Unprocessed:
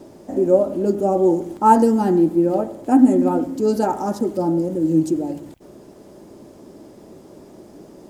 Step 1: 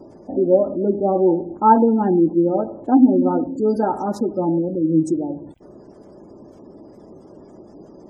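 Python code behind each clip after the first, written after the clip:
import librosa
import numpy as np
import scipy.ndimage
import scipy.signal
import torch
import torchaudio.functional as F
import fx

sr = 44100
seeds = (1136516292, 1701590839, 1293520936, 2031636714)

y = fx.spec_gate(x, sr, threshold_db=-30, keep='strong')
y = fx.end_taper(y, sr, db_per_s=520.0)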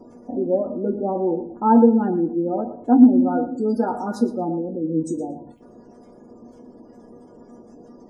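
y = fx.comb_fb(x, sr, f0_hz=240.0, decay_s=0.18, harmonics='all', damping=0.0, mix_pct=90)
y = fx.echo_feedback(y, sr, ms=116, feedback_pct=16, wet_db=-14.5)
y = F.gain(torch.from_numpy(y), 9.0).numpy()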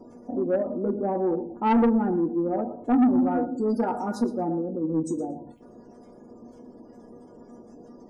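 y = 10.0 ** (-13.5 / 20.0) * np.tanh(x / 10.0 ** (-13.5 / 20.0))
y = F.gain(torch.from_numpy(y), -2.0).numpy()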